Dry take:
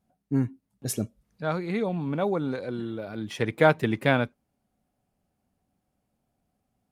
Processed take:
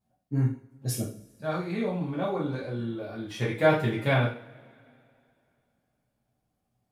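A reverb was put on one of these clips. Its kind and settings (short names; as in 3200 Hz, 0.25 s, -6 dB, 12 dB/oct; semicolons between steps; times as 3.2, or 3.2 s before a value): two-slope reverb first 0.43 s, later 2.7 s, from -27 dB, DRR -7 dB; gain -9.5 dB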